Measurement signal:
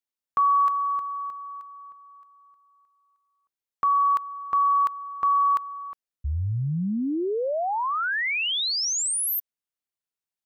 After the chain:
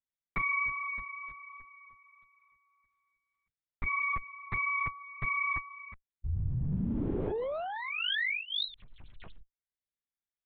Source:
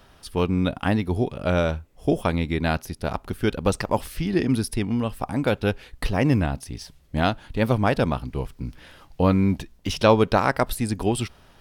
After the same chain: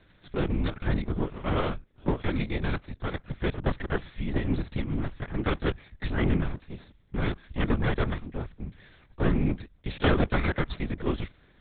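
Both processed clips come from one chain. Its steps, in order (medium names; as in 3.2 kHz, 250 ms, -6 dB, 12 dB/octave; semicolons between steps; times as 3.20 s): comb filter that takes the minimum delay 0.53 ms; LPC vocoder at 8 kHz whisper; trim -5 dB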